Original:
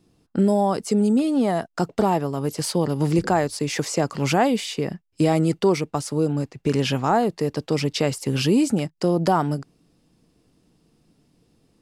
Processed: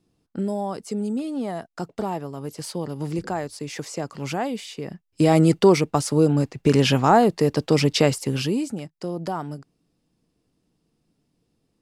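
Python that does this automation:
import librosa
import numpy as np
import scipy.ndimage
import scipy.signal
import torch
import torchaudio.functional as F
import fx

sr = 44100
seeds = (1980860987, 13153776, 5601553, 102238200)

y = fx.gain(x, sr, db=fx.line((4.81, -7.5), (5.38, 4.0), (8.05, 4.0), (8.72, -9.0)))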